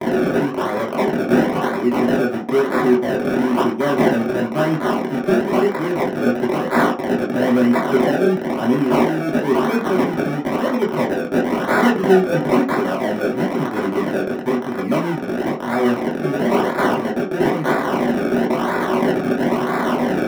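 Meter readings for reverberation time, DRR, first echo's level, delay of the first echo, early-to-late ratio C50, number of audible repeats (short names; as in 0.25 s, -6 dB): 0.40 s, -5.0 dB, none, none, 9.5 dB, none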